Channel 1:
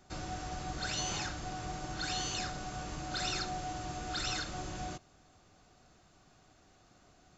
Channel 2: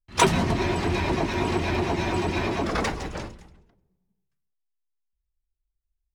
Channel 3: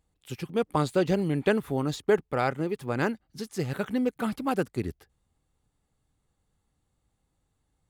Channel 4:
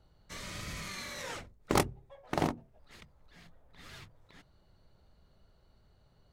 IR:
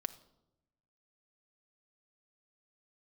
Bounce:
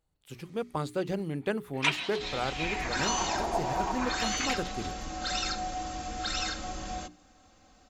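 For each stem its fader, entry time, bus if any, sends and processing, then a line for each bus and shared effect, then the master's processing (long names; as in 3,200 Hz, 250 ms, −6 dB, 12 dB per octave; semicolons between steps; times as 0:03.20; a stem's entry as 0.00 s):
−3.5 dB, 2.10 s, no send, comb filter 3.8 ms, depth 83%; automatic gain control gain up to 5 dB
+2.0 dB, 1.65 s, no send, LFO wah 0.39 Hz 720–3,800 Hz, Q 2.6
−6.5 dB, 0.00 s, no send, no processing
−16.5 dB, 0.00 s, no send, downward compressor 2.5 to 1, threshold −42 dBFS, peak gain reduction 14 dB; automatic ducking −10 dB, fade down 1.30 s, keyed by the third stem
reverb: not used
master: mains-hum notches 60/120/180/240/300/360/420 Hz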